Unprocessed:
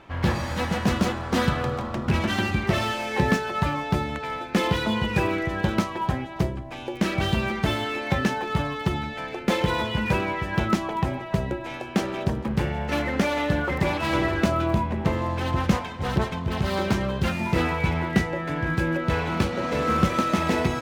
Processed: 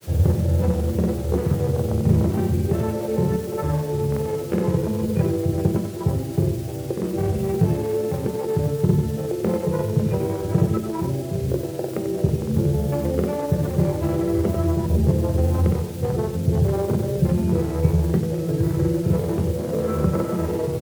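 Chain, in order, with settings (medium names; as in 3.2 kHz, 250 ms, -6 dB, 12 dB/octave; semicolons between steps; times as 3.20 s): local Wiener filter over 41 samples; low-pass 1.9 kHz; peaking EQ 430 Hz +12.5 dB 1.8 oct; compression, threshold -22 dBFS, peak gain reduction 12.5 dB; added noise white -43 dBFS; vibrato 0.37 Hz 18 cents; granulator, spray 38 ms, pitch spread up and down by 0 st; delay 92 ms -8.5 dB; on a send at -11 dB: reverberation RT60 0.35 s, pre-delay 3 ms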